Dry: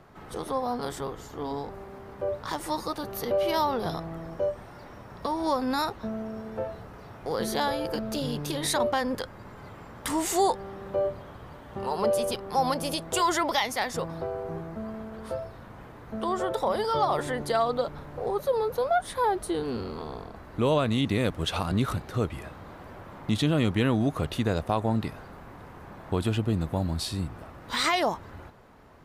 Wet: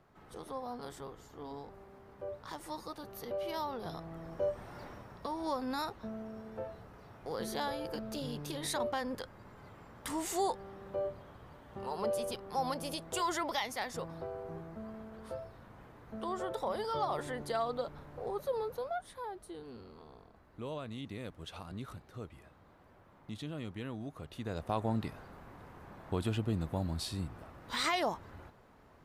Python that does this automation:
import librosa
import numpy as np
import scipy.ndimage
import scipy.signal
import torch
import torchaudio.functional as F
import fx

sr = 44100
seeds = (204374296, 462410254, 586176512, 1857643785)

y = fx.gain(x, sr, db=fx.line((3.79, -12.0), (4.83, -1.5), (5.24, -9.0), (18.6, -9.0), (19.26, -17.5), (24.27, -17.5), (24.76, -7.0)))